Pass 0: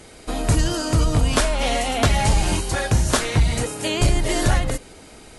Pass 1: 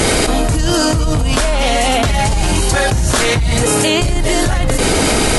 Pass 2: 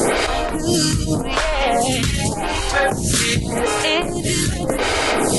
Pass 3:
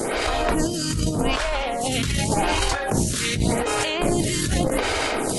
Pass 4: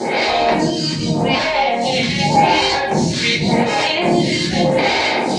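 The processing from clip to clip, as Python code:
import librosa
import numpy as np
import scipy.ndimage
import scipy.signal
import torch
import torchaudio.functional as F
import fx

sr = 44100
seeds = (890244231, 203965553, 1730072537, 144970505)

y1 = fx.env_flatten(x, sr, amount_pct=100)
y1 = F.gain(torch.from_numpy(y1), -1.0).numpy()
y2 = fx.octave_divider(y1, sr, octaves=1, level_db=-1.0)
y2 = fx.low_shelf(y2, sr, hz=92.0, db=-10.5)
y2 = fx.stagger_phaser(y2, sr, hz=0.86)
y3 = fx.over_compress(y2, sr, threshold_db=-23.0, ratio=-1.0)
y4 = fx.cabinet(y3, sr, low_hz=170.0, low_slope=12, high_hz=6200.0, hz=(420.0, 870.0, 1300.0, 2200.0, 4200.0), db=(-6, 7, -10, 5, 7))
y4 = fx.room_shoebox(y4, sr, seeds[0], volume_m3=40.0, walls='mixed', distance_m=1.0)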